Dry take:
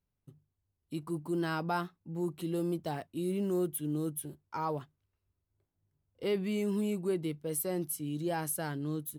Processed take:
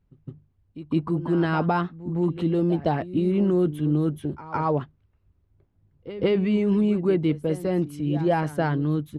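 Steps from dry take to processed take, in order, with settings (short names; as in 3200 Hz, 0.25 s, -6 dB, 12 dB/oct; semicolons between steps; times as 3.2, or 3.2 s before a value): LPF 2700 Hz 12 dB/oct; low shelf 260 Hz +10 dB; reverse echo 0.16 s -14.5 dB; harmonic-percussive split percussive +7 dB; gain +5.5 dB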